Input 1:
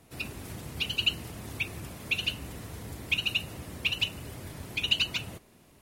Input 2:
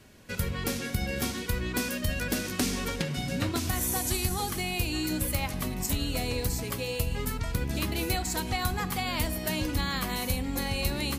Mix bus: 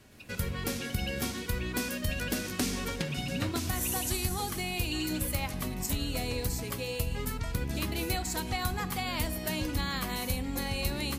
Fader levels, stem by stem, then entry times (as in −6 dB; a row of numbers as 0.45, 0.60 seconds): −15.5, −2.5 decibels; 0.00, 0.00 seconds